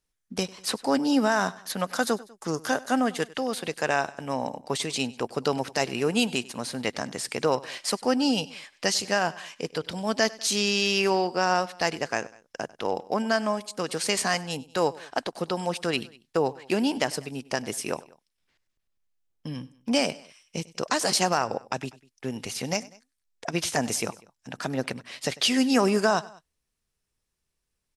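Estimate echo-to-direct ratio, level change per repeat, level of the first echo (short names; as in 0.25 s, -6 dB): -19.5 dB, -4.5 dB, -21.0 dB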